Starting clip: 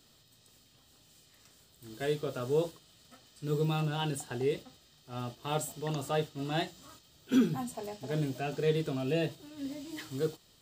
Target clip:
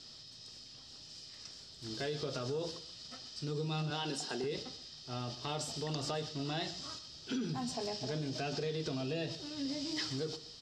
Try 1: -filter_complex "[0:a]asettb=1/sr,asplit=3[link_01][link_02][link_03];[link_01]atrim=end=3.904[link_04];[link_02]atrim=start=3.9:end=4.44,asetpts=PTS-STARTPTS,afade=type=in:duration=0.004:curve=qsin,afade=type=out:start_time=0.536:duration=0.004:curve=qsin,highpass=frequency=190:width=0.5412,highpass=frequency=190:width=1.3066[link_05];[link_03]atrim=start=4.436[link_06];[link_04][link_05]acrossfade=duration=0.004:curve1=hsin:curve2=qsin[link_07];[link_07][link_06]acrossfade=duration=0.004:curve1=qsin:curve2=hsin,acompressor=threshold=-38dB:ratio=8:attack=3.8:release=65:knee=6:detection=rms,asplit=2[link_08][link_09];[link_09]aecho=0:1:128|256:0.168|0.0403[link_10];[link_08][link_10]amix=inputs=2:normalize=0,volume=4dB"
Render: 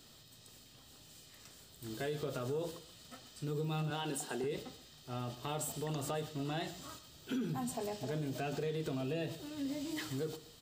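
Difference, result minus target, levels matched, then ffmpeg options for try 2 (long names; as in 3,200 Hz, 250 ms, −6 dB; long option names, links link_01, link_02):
4,000 Hz band −7.0 dB
-filter_complex "[0:a]asettb=1/sr,asplit=3[link_01][link_02][link_03];[link_01]atrim=end=3.904[link_04];[link_02]atrim=start=3.9:end=4.44,asetpts=PTS-STARTPTS,afade=type=in:duration=0.004:curve=qsin,afade=type=out:start_time=0.536:duration=0.004:curve=qsin,highpass=frequency=190:width=0.5412,highpass=frequency=190:width=1.3066[link_05];[link_03]atrim=start=4.436[link_06];[link_04][link_05]acrossfade=duration=0.004:curve1=hsin:curve2=qsin[link_07];[link_07][link_06]acrossfade=duration=0.004:curve1=qsin:curve2=hsin,acompressor=threshold=-38dB:ratio=8:attack=3.8:release=65:knee=6:detection=rms,lowpass=frequency=5200:width_type=q:width=5.6,asplit=2[link_08][link_09];[link_09]aecho=0:1:128|256:0.168|0.0403[link_10];[link_08][link_10]amix=inputs=2:normalize=0,volume=4dB"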